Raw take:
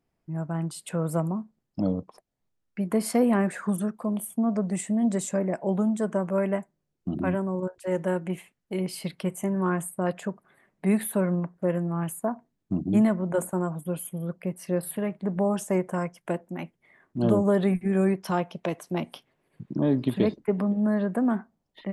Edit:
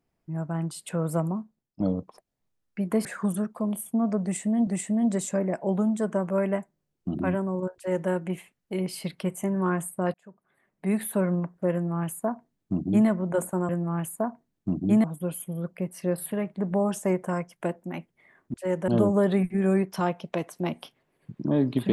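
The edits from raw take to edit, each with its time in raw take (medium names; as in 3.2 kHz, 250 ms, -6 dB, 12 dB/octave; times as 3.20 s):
1.33–1.80 s: fade out, to -18.5 dB
3.05–3.49 s: delete
4.67–5.11 s: loop, 2 plays
7.76–8.10 s: copy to 17.19 s
10.14–11.21 s: fade in
11.73–13.08 s: copy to 13.69 s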